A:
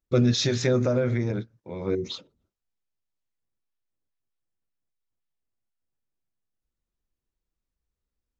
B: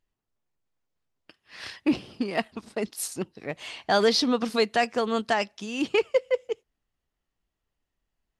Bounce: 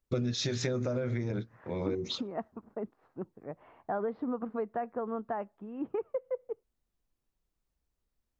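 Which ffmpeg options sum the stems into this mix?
ffmpeg -i stem1.wav -i stem2.wav -filter_complex "[0:a]volume=1dB[link_01];[1:a]lowpass=frequency=1300:width=0.5412,lowpass=frequency=1300:width=1.3066,volume=-7.5dB[link_02];[link_01][link_02]amix=inputs=2:normalize=0,acompressor=threshold=-29dB:ratio=6" out.wav

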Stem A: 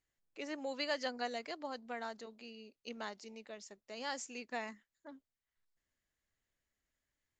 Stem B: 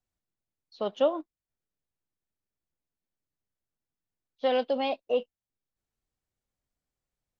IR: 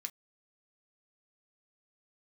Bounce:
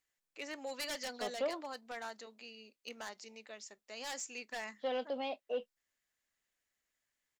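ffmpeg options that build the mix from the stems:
-filter_complex "[0:a]lowshelf=frequency=340:gain=-11,aeval=exprs='0.0168*(abs(mod(val(0)/0.0168+3,4)-2)-1)':channel_layout=same,volume=0dB,asplit=2[link_01][link_02];[link_02]volume=-5dB[link_03];[1:a]highpass=190,adelay=400,volume=-11dB,asplit=2[link_04][link_05];[link_05]volume=-5dB[link_06];[2:a]atrim=start_sample=2205[link_07];[link_03][link_06]amix=inputs=2:normalize=0[link_08];[link_08][link_07]afir=irnorm=-1:irlink=0[link_09];[link_01][link_04][link_09]amix=inputs=3:normalize=0,asoftclip=type=tanh:threshold=-26dB"

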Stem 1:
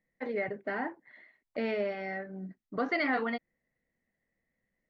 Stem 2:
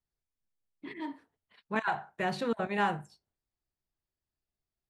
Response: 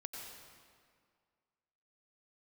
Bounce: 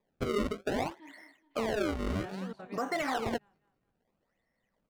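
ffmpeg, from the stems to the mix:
-filter_complex "[0:a]equalizer=frequency=930:width_type=o:width=1.5:gain=9,acrusher=samples=30:mix=1:aa=0.000001:lfo=1:lforange=48:lforate=0.61,aemphasis=mode=reproduction:type=50kf,volume=1.5dB[link_01];[1:a]volume=-14dB,asplit=2[link_02][link_03];[link_03]volume=-12dB,aecho=0:1:209|418|627|836|1045:1|0.39|0.152|0.0593|0.0231[link_04];[link_01][link_02][link_04]amix=inputs=3:normalize=0,alimiter=limit=-23dB:level=0:latency=1:release=276"

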